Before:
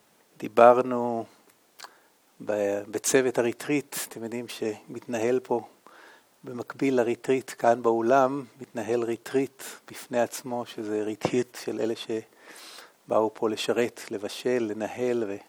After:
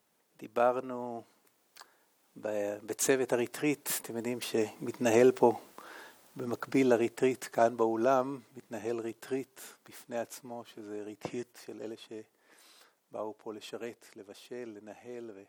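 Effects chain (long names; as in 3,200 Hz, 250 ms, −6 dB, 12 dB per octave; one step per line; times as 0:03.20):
source passing by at 0:05.51, 6 m/s, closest 5.9 metres
high-shelf EQ 11,000 Hz +6 dB
level +2.5 dB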